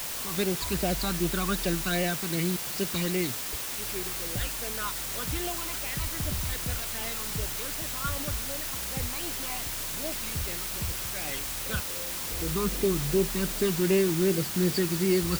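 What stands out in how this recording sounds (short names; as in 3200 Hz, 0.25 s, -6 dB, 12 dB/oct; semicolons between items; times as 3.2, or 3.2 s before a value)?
phasing stages 12, 2.6 Hz, lowest notch 540–1300 Hz; a quantiser's noise floor 6-bit, dither triangular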